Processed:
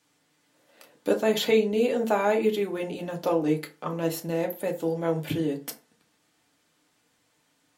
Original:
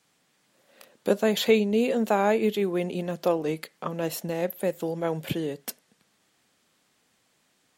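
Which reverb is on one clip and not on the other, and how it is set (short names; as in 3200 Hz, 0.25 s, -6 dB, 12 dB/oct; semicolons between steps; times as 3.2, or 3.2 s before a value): FDN reverb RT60 0.33 s, low-frequency decay 1.1×, high-frequency decay 0.6×, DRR 1.5 dB; gain -2.5 dB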